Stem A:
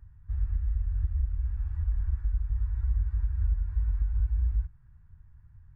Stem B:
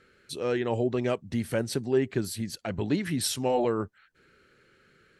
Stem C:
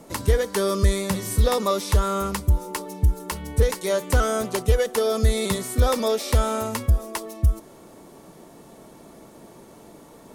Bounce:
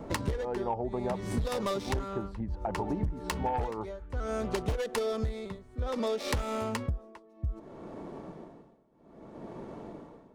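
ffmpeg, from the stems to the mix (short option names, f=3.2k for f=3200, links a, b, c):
-filter_complex "[0:a]volume=-8.5dB[a];[1:a]lowpass=f=870:t=q:w=8.3,volume=-7.5dB,asplit=2[b][c];[2:a]acrossover=split=480|3000[d][e][f];[e]acompressor=threshold=-26dB:ratio=2.5[g];[d][g][f]amix=inputs=3:normalize=0,tremolo=f=0.62:d=0.95,adynamicsmooth=sensitivity=3:basefreq=1.4k,volume=0.5dB[h];[c]apad=whole_len=253828[i];[a][i]sidechaincompress=threshold=-40dB:ratio=8:attack=16:release=1150[j];[j][b][h]amix=inputs=3:normalize=0,highshelf=f=3.5k:g=9.5,aeval=exprs='0.398*(cos(1*acos(clip(val(0)/0.398,-1,1)))-cos(1*PI/2))+0.0501*(cos(5*acos(clip(val(0)/0.398,-1,1)))-cos(5*PI/2))+0.0794*(cos(6*acos(clip(val(0)/0.398,-1,1)))-cos(6*PI/2))+0.0501*(cos(8*acos(clip(val(0)/0.398,-1,1)))-cos(8*PI/2))':c=same,acompressor=threshold=-28dB:ratio=10"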